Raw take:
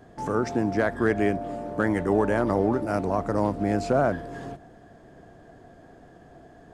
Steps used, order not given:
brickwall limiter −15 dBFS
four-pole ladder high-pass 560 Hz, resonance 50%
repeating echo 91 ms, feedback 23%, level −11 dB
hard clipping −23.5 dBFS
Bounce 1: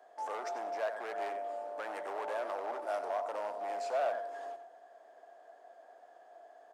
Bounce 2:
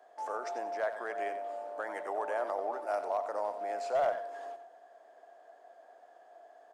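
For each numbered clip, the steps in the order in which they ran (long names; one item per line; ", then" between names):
brickwall limiter, then repeating echo, then hard clipping, then four-pole ladder high-pass
brickwall limiter, then four-pole ladder high-pass, then hard clipping, then repeating echo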